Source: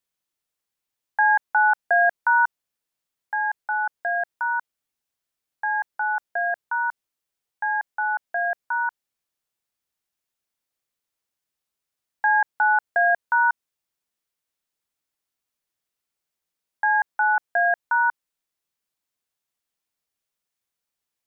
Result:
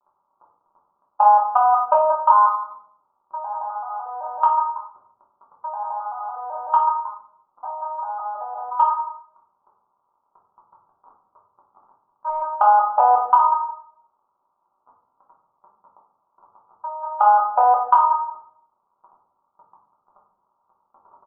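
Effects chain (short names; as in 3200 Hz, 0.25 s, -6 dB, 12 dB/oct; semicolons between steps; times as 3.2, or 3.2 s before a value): arpeggiated vocoder minor triad, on G#3, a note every 0.382 s; in parallel at -10.5 dB: soft clip -18.5 dBFS, distortion -12 dB; on the sum: crackle 83/s -35 dBFS; steep low-pass 1300 Hz 96 dB/oct; tilt +4.5 dB/oct; on a send: echo 0.169 s -13.5 dB; on the sum: level quantiser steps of 22 dB; bell 940 Hz +13.5 dB 0.49 oct; compressor, threshold -19 dBFS, peak gain reduction 10 dB; shoebox room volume 94 m³, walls mixed, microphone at 1.2 m; gain +4 dB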